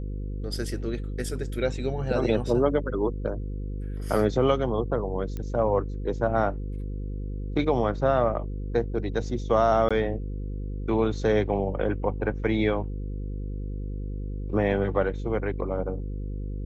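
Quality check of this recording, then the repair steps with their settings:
mains buzz 50 Hz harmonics 10 −32 dBFS
0:05.37: click −21 dBFS
0:09.89–0:09.91: drop-out 16 ms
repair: click removal
hum removal 50 Hz, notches 10
repair the gap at 0:09.89, 16 ms

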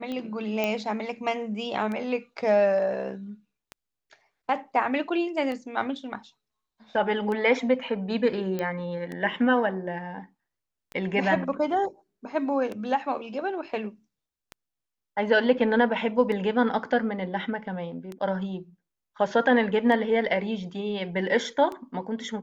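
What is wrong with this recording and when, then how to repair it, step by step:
scratch tick 33 1/3 rpm −22 dBFS
0:00.64: click −13 dBFS
0:08.59: click −17 dBFS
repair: click removal

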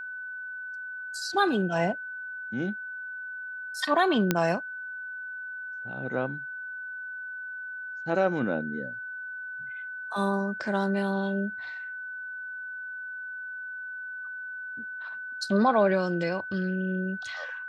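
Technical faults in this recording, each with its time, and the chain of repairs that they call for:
whistle 1,500 Hz −35 dBFS
0:04.31: click −8 dBFS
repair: click removal
notch filter 1,500 Hz, Q 30

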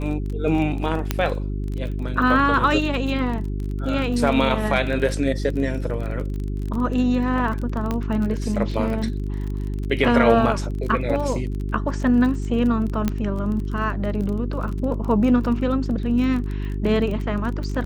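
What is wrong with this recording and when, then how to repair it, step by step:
surface crackle 27 per second −28 dBFS
mains hum 50 Hz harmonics 8 −26 dBFS
0:01.11: click −6 dBFS
0:07.91: click −12 dBFS
0:13.08: click −9 dBFS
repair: click removal
hum removal 50 Hz, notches 8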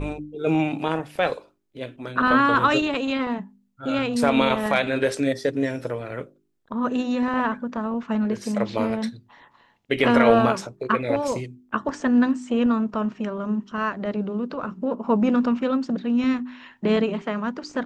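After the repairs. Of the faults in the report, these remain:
none of them is left

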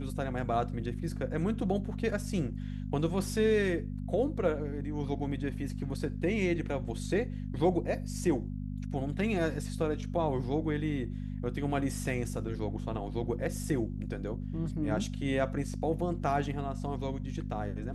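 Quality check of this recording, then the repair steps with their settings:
mains hum 50 Hz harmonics 5 −37 dBFS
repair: hum removal 50 Hz, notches 5

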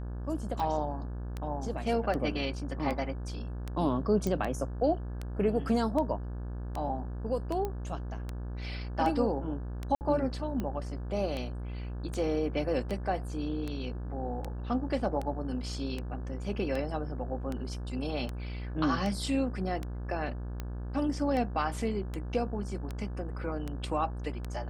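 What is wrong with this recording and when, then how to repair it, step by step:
mains buzz 60 Hz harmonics 29 −37 dBFS
scratch tick 78 rpm −22 dBFS
0:04.27: click −19 dBFS
0:07.65: click −21 dBFS
0:09.95–0:10.01: drop-out 59 ms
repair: click removal
hum removal 60 Hz, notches 29
repair the gap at 0:09.95, 59 ms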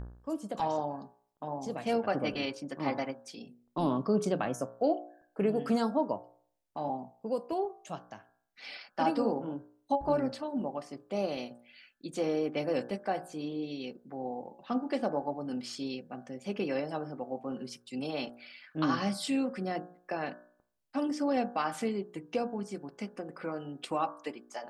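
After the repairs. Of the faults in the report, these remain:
none of them is left

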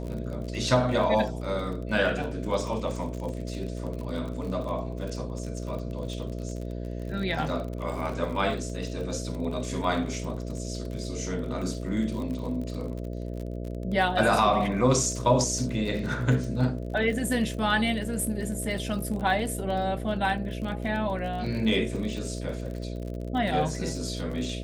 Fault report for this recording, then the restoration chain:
mains buzz 60 Hz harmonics 11 −34 dBFS
surface crackle 40 per second −34 dBFS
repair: click removal
hum removal 60 Hz, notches 11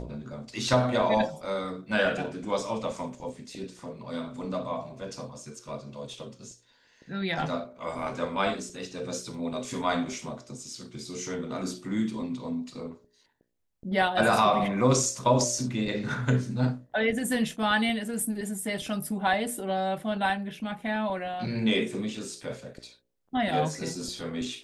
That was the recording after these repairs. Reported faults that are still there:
none of them is left

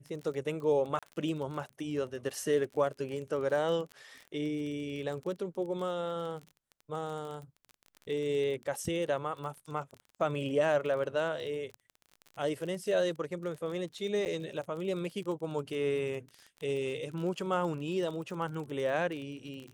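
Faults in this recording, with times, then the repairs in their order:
surface crackle 30 per second −38 dBFS
0:00.99–0:01.03: drop-out 36 ms
0:14.25–0:14.26: drop-out 8.8 ms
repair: click removal
repair the gap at 0:00.99, 36 ms
repair the gap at 0:14.25, 8.8 ms

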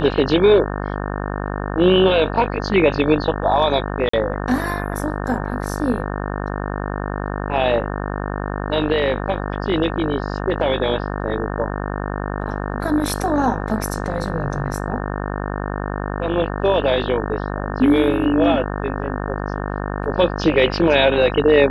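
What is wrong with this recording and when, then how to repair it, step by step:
mains buzz 50 Hz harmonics 36 −25 dBFS
0:04.09–0:04.13: drop-out 44 ms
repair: hum removal 50 Hz, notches 36
repair the gap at 0:04.09, 44 ms

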